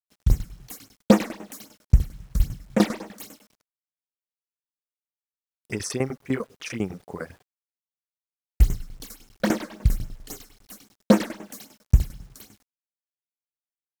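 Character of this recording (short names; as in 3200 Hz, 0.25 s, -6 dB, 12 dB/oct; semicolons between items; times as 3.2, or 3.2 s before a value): phasing stages 8, 3.7 Hz, lowest notch 100–4500 Hz; tremolo saw down 10 Hz, depth 85%; a quantiser's noise floor 10-bit, dither none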